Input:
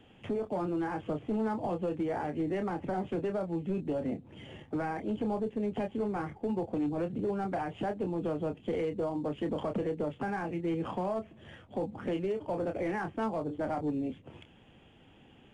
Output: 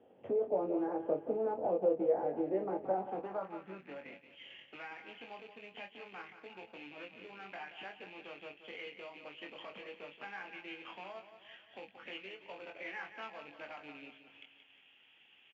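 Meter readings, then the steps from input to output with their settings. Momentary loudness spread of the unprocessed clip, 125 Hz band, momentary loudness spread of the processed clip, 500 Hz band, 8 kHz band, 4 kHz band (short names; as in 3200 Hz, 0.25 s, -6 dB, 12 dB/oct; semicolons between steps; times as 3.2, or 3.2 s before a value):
4 LU, -19.0 dB, 18 LU, -3.5 dB, n/a, +1.5 dB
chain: rattling part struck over -38 dBFS, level -44 dBFS; doubler 21 ms -5.5 dB; on a send: feedback echo 0.177 s, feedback 48%, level -10 dB; on the sum: transient shaper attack +2 dB, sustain -2 dB; downsampling 16000 Hz; band-pass sweep 530 Hz -> 2600 Hz, 2.75–4.3; gain +2.5 dB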